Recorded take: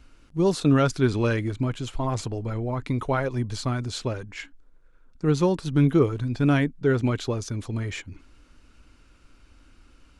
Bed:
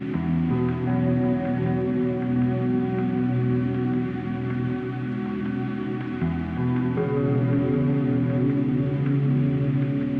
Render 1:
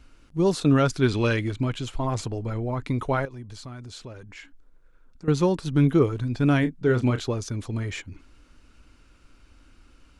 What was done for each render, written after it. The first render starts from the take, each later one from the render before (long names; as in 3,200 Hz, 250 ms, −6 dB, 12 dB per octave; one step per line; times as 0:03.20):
0:01.02–0:01.84: dynamic equaliser 3,200 Hz, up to +6 dB, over −46 dBFS, Q 0.92
0:03.25–0:05.28: downward compressor 2.5 to 1, threshold −42 dBFS
0:06.60–0:07.22: double-tracking delay 32 ms −9.5 dB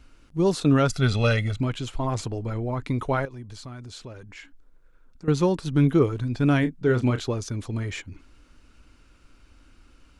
0:00.89–0:01.61: comb filter 1.5 ms, depth 77%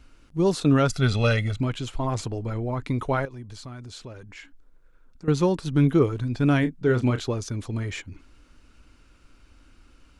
no processing that can be heard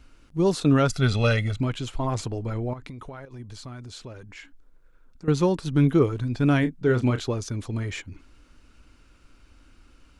0:02.73–0:03.40: downward compressor 16 to 1, threshold −35 dBFS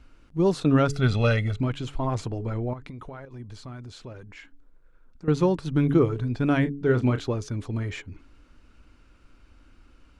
high-shelf EQ 4,000 Hz −8.5 dB
hum removal 141.5 Hz, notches 3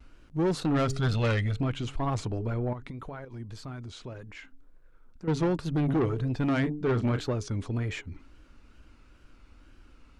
tape wow and flutter 90 cents
soft clipping −21.5 dBFS, distortion −10 dB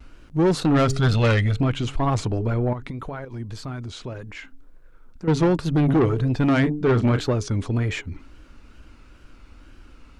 level +7.5 dB